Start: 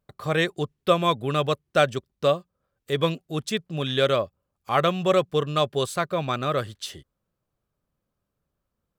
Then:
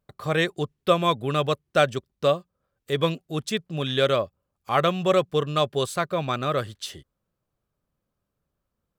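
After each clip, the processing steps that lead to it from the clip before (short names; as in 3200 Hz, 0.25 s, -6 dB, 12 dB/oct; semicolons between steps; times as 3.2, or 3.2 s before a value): nothing audible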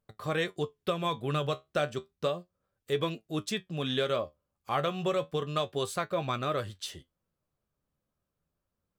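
compressor, threshold -21 dBFS, peak gain reduction 8 dB; flange 0.32 Hz, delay 8.7 ms, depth 5.9 ms, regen +59%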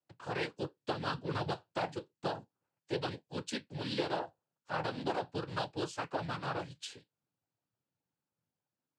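noise vocoder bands 8; gain -5.5 dB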